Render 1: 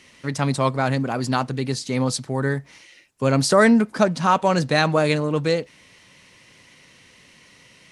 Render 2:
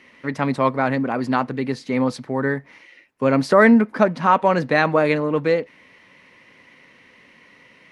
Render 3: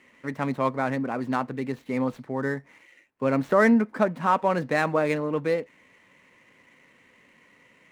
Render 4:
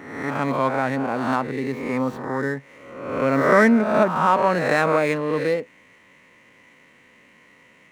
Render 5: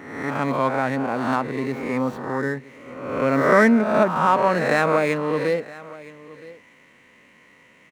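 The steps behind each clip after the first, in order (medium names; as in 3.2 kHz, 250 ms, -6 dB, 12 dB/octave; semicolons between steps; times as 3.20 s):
graphic EQ 250/500/1000/2000/8000 Hz +9/+7/+7/+10/-9 dB; trim -7.5 dB
median filter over 9 samples; trim -6 dB
reverse spectral sustain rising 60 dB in 0.98 s; trim +2 dB
delay 969 ms -19.5 dB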